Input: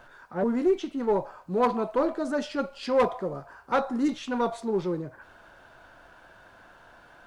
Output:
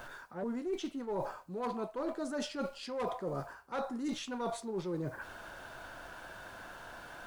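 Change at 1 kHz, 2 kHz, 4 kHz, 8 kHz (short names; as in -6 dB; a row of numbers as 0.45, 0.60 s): -10.5, -6.0, -3.5, 0.0 dB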